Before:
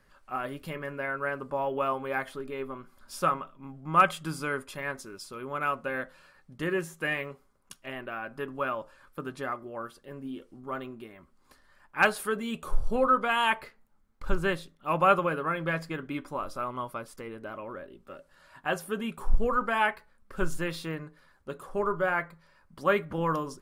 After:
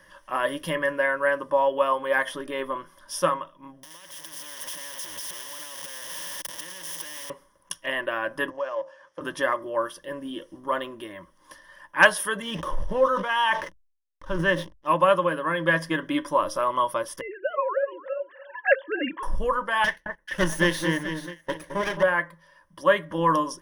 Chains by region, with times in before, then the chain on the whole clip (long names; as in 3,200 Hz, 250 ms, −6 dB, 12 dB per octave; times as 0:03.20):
0:03.83–0:07.30: converter with a step at zero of −32 dBFS + downward compressor, threshold −37 dBFS + every bin compressed towards the loudest bin 4 to 1
0:08.50–0:09.21: mu-law and A-law mismatch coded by A + downward compressor 3 to 1, threshold −46 dBFS + loudspeaker in its box 140–7,000 Hz, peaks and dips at 230 Hz −8 dB, 520 Hz +8 dB, 740 Hz +8 dB, 3,700 Hz −6 dB
0:12.42–0:14.87: high-shelf EQ 4,800 Hz −11 dB + slack as between gear wheels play −45.5 dBFS + level that may fall only so fast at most 92 dB per second
0:17.21–0:19.23: three sine waves on the formant tracks + repeating echo 293 ms, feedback 26%, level −16.5 dB
0:19.84–0:22.03: lower of the sound and its delayed copy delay 0.47 ms + delay that swaps between a low-pass and a high-pass 217 ms, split 1,500 Hz, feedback 59%, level −6.5 dB + noise gate −46 dBFS, range −13 dB
whole clip: low-shelf EQ 230 Hz −11.5 dB; speech leveller within 4 dB 0.5 s; EQ curve with evenly spaced ripples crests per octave 1.2, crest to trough 13 dB; level +5.5 dB